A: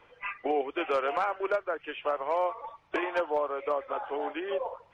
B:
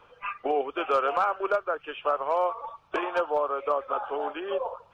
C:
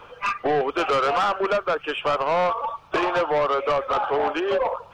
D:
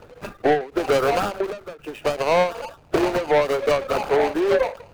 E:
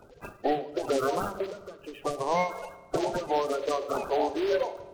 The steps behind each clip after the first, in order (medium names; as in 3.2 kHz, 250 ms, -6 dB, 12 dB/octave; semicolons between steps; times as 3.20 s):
graphic EQ with 31 bands 315 Hz -5 dB, 1.25 kHz +6 dB, 2 kHz -11 dB; trim +2.5 dB
in parallel at +2.5 dB: peak limiter -21 dBFS, peak gain reduction 7.5 dB; on the sum: saturation -21 dBFS, distortion -10 dB; trim +4 dB
median filter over 41 samples; endings held to a fixed fall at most 160 dB/s; trim +5.5 dB
coarse spectral quantiser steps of 30 dB; on a send at -12 dB: reverberation RT60 1.4 s, pre-delay 3 ms; on the sum: trim -7.5 dB